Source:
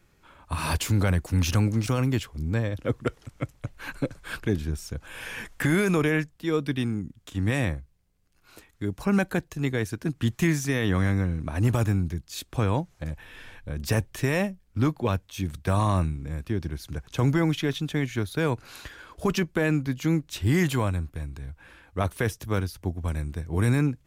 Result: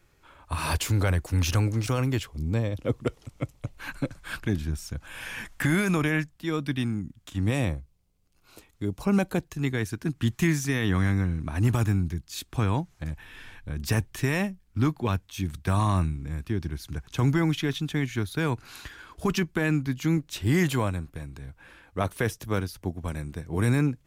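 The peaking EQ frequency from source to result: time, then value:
peaking EQ -7.5 dB 0.54 oct
200 Hz
from 2.27 s 1.6 kHz
from 3.80 s 440 Hz
from 7.40 s 1.7 kHz
from 9.45 s 540 Hz
from 20.17 s 76 Hz

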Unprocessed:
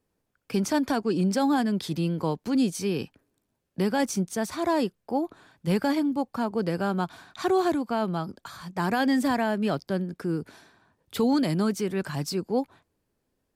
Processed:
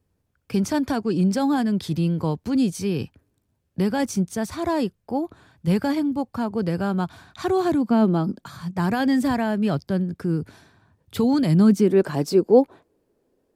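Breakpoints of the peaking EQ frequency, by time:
peaking EQ +14 dB 1.8 oct
7.50 s 79 Hz
8.11 s 300 Hz
8.84 s 92 Hz
11.46 s 92 Hz
12.01 s 420 Hz

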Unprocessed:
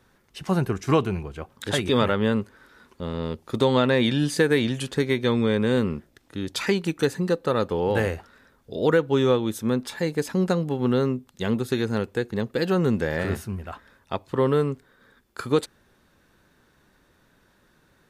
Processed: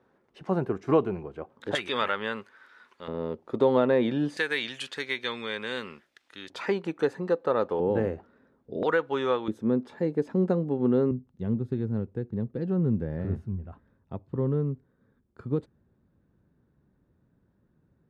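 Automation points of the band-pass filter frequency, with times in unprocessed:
band-pass filter, Q 0.77
480 Hz
from 1.75 s 1.8 kHz
from 3.08 s 510 Hz
from 4.37 s 2.5 kHz
from 6.50 s 710 Hz
from 7.80 s 290 Hz
from 8.83 s 1.2 kHz
from 9.48 s 320 Hz
from 11.11 s 120 Hz

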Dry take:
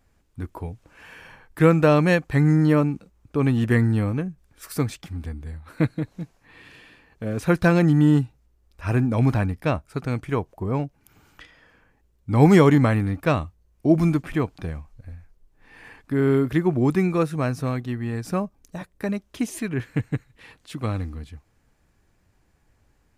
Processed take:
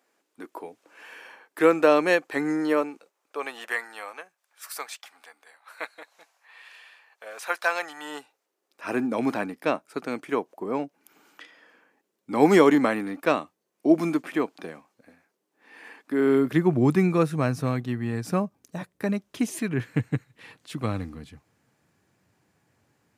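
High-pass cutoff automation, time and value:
high-pass 24 dB/octave
2.49 s 310 Hz
3.83 s 680 Hz
7.99 s 680 Hz
8.86 s 250 Hz
16.17 s 250 Hz
16.77 s 110 Hz

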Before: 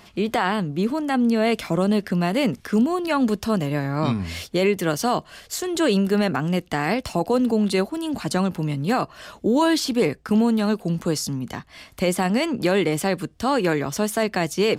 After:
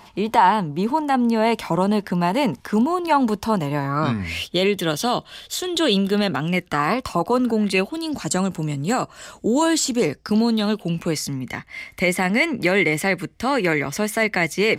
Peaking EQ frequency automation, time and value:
peaking EQ +15 dB 0.3 oct
3.80 s 920 Hz
4.52 s 3.5 kHz
6.40 s 3.5 kHz
6.81 s 1.1 kHz
7.35 s 1.1 kHz
8.31 s 7.6 kHz
9.82 s 7.6 kHz
11.20 s 2.1 kHz

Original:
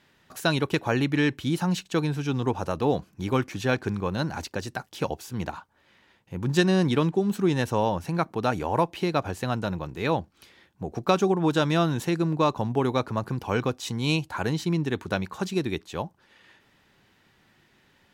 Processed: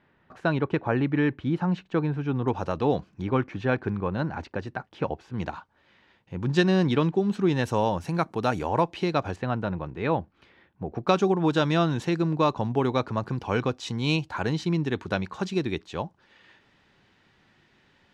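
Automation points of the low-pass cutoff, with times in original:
1.8 kHz
from 2.48 s 4.5 kHz
from 3.22 s 2.2 kHz
from 5.38 s 4.7 kHz
from 7.64 s 10 kHz
from 8.69 s 6.1 kHz
from 9.36 s 2.4 kHz
from 11.07 s 5.6 kHz

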